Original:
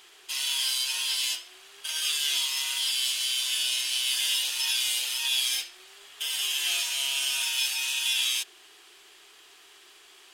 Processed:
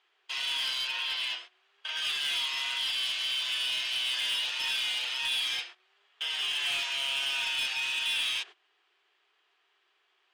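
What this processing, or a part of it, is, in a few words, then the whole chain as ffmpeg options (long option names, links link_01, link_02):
walkie-talkie: -filter_complex "[0:a]asettb=1/sr,asplit=3[link_01][link_02][link_03];[link_01]atrim=end=0.874[link_04];[link_02]atrim=start=0.87:end=1.97,asetpts=PTS-STARTPTS,afade=type=in:duration=0.004:curve=qsin,afade=type=out:start_time=1.096:duration=0.004:curve=qsin,acrossover=split=4700[link_05][link_06];[link_06]acompressor=threshold=-42dB:ratio=4:attack=1:release=60[link_07];[link_05][link_07]amix=inputs=2:normalize=0[link_08];[link_03]atrim=start=1.966[link_09];[link_04][link_08]acrossfade=duration=0.004:curve1=hsin:curve2=qsin[link_10];[link_10][link_09]acrossfade=duration=0.004:curve1=qsin:curve2=hsin,highpass=470,lowpass=2700,asoftclip=type=hard:threshold=-30.5dB,agate=range=-18dB:threshold=-48dB:ratio=16:detection=peak,volume=4dB"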